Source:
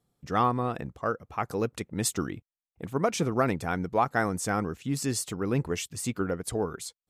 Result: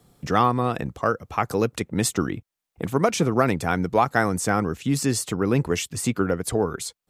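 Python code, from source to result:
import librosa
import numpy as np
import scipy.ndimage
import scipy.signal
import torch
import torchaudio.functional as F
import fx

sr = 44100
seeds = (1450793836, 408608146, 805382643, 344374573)

y = fx.band_squash(x, sr, depth_pct=40)
y = y * 10.0 ** (6.0 / 20.0)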